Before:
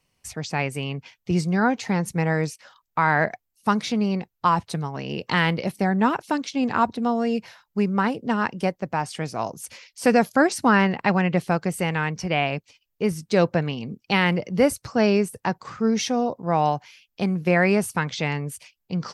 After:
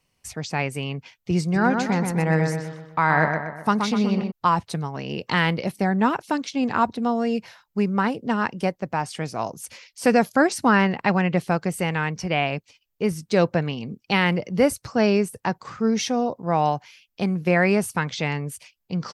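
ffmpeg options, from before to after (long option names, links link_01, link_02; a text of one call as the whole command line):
ffmpeg -i in.wav -filter_complex "[0:a]asplit=3[link_01][link_02][link_03];[link_01]afade=type=out:start_time=1.53:duration=0.02[link_04];[link_02]asplit=2[link_05][link_06];[link_06]adelay=125,lowpass=frequency=3400:poles=1,volume=-5dB,asplit=2[link_07][link_08];[link_08]adelay=125,lowpass=frequency=3400:poles=1,volume=0.48,asplit=2[link_09][link_10];[link_10]adelay=125,lowpass=frequency=3400:poles=1,volume=0.48,asplit=2[link_11][link_12];[link_12]adelay=125,lowpass=frequency=3400:poles=1,volume=0.48,asplit=2[link_13][link_14];[link_14]adelay=125,lowpass=frequency=3400:poles=1,volume=0.48,asplit=2[link_15][link_16];[link_16]adelay=125,lowpass=frequency=3400:poles=1,volume=0.48[link_17];[link_05][link_07][link_09][link_11][link_13][link_15][link_17]amix=inputs=7:normalize=0,afade=type=in:start_time=1.53:duration=0.02,afade=type=out:start_time=4.3:duration=0.02[link_18];[link_03]afade=type=in:start_time=4.3:duration=0.02[link_19];[link_04][link_18][link_19]amix=inputs=3:normalize=0" out.wav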